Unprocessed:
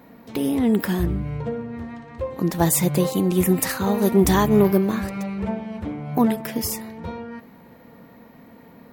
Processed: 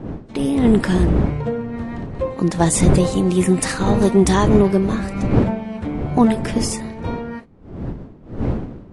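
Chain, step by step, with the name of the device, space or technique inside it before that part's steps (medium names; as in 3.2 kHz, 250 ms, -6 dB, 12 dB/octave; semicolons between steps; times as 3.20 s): gate -39 dBFS, range -27 dB; smartphone video outdoors (wind noise 250 Hz -27 dBFS; level rider gain up to 5.5 dB; AAC 48 kbps 22.05 kHz)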